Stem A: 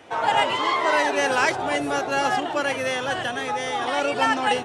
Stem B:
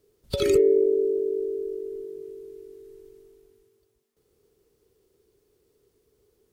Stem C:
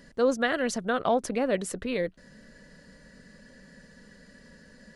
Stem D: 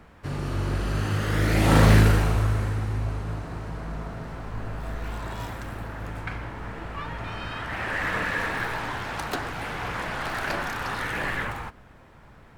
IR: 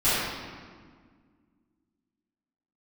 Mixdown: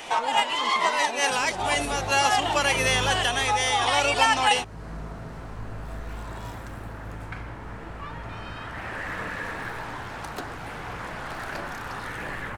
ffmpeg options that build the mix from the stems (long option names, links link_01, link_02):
-filter_complex "[0:a]equalizer=frequency=1000:width_type=o:width=1.5:gain=11,aexciter=amount=4:drive=6.2:freq=2100,volume=0dB[link_01];[1:a]adelay=2250,volume=-14dB[link_02];[2:a]asoftclip=type=tanh:threshold=-22dB,volume=-4.5dB,asplit=2[link_03][link_04];[3:a]equalizer=frequency=8100:width_type=o:width=1.9:gain=5,dynaudnorm=framelen=430:gausssize=3:maxgain=11dB,adynamicequalizer=threshold=0.0224:dfrequency=1900:dqfactor=0.7:tfrequency=1900:tqfactor=0.7:attack=5:release=100:ratio=0.375:range=2.5:mode=cutabove:tftype=highshelf,adelay=1050,volume=-13dB[link_05];[link_04]apad=whole_len=204802[link_06];[link_01][link_06]sidechaincompress=threshold=-41dB:ratio=8:attack=31:release=103[link_07];[link_07][link_02][link_03][link_05]amix=inputs=4:normalize=0,acompressor=threshold=-32dB:ratio=1.5"